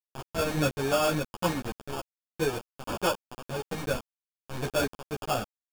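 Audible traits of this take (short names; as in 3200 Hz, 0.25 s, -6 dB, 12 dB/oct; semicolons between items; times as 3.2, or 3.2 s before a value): aliases and images of a low sample rate 2000 Hz, jitter 0%; random-step tremolo, depth 75%; a quantiser's noise floor 6-bit, dither none; a shimmering, thickened sound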